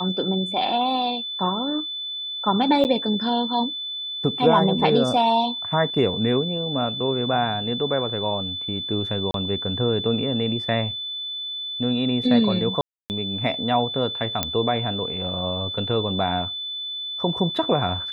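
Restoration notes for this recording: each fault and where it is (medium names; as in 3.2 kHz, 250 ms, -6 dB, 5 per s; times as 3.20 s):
whine 3.5 kHz -28 dBFS
2.84–2.85 s: dropout 9 ms
9.31–9.34 s: dropout 32 ms
12.81–13.10 s: dropout 289 ms
14.43 s: pop -5 dBFS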